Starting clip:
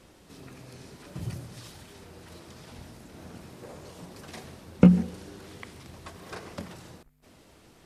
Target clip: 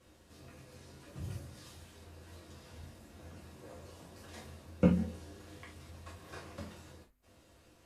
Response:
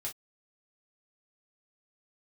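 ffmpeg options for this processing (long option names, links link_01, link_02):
-filter_complex "[1:a]atrim=start_sample=2205,asetrate=33957,aresample=44100[link_01];[0:a][link_01]afir=irnorm=-1:irlink=0,volume=-8.5dB"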